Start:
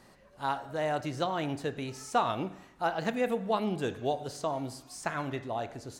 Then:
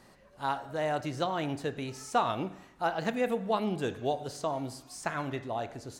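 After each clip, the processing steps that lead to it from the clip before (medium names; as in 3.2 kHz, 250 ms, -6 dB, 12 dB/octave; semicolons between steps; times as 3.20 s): no audible change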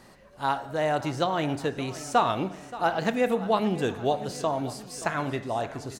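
feedback delay 576 ms, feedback 56%, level -16.5 dB; trim +5 dB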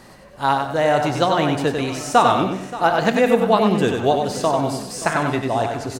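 feedback delay 95 ms, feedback 33%, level -5 dB; trim +7.5 dB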